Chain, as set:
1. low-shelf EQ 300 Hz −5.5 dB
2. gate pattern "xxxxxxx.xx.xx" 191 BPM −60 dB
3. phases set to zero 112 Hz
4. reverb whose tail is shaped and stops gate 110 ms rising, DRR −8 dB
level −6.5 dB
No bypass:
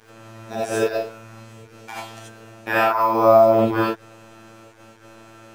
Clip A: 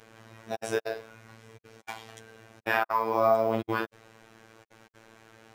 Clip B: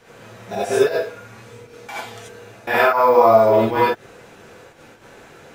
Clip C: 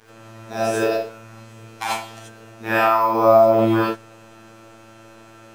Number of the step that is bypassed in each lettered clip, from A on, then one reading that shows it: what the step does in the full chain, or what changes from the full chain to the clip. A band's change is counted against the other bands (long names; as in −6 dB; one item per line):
4, change in momentary loudness spread −3 LU
3, 250 Hz band −4.0 dB
2, 4 kHz band +1.5 dB